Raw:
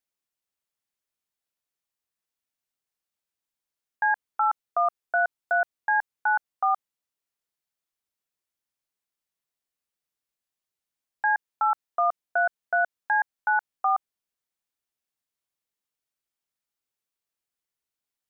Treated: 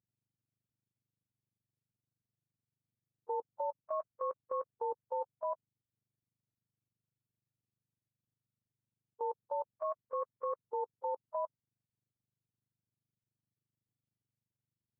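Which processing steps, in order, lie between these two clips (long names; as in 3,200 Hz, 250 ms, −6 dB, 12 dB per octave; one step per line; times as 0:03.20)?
frequency axis turned over on the octave scale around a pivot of 790 Hz
output level in coarse steps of 14 dB
speed change +22%
level −6.5 dB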